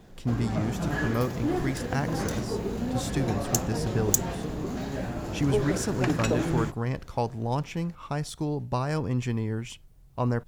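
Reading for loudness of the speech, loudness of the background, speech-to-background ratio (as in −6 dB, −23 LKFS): −31.0 LKFS, −30.0 LKFS, −1.0 dB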